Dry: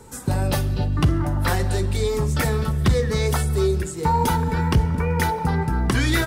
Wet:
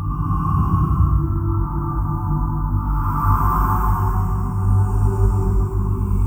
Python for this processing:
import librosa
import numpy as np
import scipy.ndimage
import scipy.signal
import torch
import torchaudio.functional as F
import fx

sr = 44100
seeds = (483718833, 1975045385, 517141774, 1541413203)

y = fx.fade_in_head(x, sr, length_s=1.82)
y = fx.fixed_phaser(y, sr, hz=2700.0, stages=8)
y = fx.quant_companded(y, sr, bits=8)
y = fx.curve_eq(y, sr, hz=(260.0, 680.0, 1100.0, 1900.0, 4000.0, 13000.0), db=(0, -6, 9, -17, -30, -1))
y = fx.paulstretch(y, sr, seeds[0], factor=6.3, window_s=0.25, from_s=0.93)
y = y * librosa.db_to_amplitude(5.5)